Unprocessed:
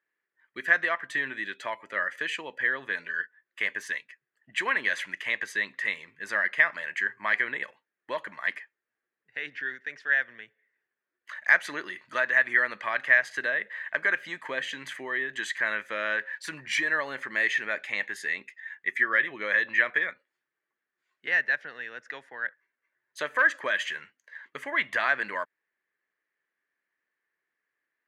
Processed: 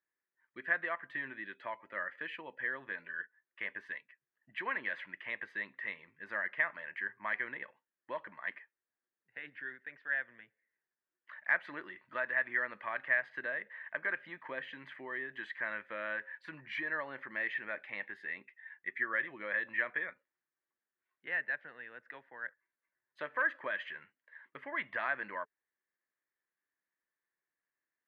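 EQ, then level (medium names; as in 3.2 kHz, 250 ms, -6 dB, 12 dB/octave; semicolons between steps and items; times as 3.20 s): distance through air 440 m; peaking EQ 960 Hz +2.5 dB 0.24 oct; band-stop 430 Hz, Q 12; -6.5 dB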